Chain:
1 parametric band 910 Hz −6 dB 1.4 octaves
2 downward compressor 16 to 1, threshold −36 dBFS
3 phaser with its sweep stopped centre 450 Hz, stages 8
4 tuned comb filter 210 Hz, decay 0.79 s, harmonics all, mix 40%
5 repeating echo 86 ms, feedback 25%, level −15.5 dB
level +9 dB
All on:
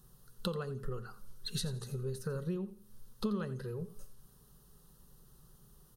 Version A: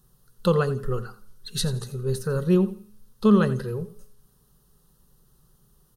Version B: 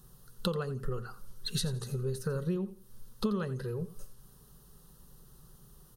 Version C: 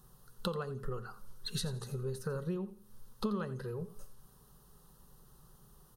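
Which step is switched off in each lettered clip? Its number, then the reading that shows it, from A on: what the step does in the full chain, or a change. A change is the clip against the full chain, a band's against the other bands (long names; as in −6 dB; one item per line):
2, average gain reduction 8.5 dB
4, change in integrated loudness +4.0 LU
1, 1 kHz band +3.5 dB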